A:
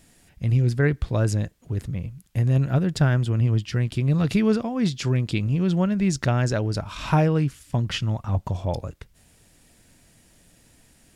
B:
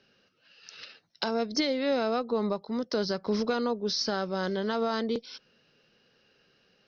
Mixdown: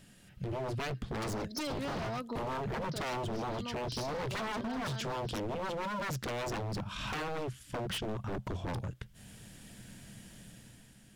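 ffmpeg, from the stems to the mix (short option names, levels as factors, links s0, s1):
-filter_complex "[0:a]equalizer=f=125:t=o:w=0.33:g=10,equalizer=f=200:t=o:w=0.33:g=11,equalizer=f=1600:t=o:w=0.33:g=5,equalizer=f=3150:t=o:w=0.33:g=6,volume=0.501,asplit=2[s0][s1];[1:a]aecho=1:1:3.2:0.56,volume=0.631[s2];[s1]apad=whole_len=303334[s3];[s2][s3]sidechaincompress=threshold=0.0708:ratio=8:attack=26:release=817[s4];[s0][s4]amix=inputs=2:normalize=0,dynaudnorm=f=160:g=9:m=2.51,aeval=exprs='0.0891*(abs(mod(val(0)/0.0891+3,4)-2)-1)':c=same,acompressor=threshold=0.00708:ratio=2"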